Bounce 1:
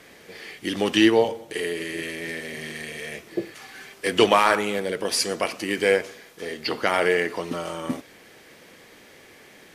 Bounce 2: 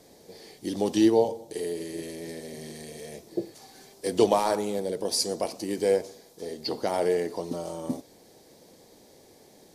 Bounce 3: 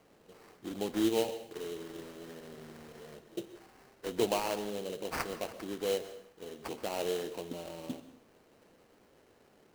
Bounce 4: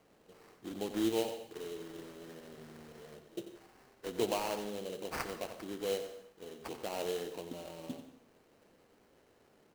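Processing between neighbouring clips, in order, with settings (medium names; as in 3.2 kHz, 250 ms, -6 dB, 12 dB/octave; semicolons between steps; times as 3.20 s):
high-order bell 1.9 kHz -15 dB; trim -2.5 dB
sample-rate reducer 3.5 kHz, jitter 20%; plate-style reverb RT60 0.63 s, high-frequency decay 0.9×, pre-delay 115 ms, DRR 13.5 dB; trim -9 dB
delay 91 ms -11 dB; trim -3 dB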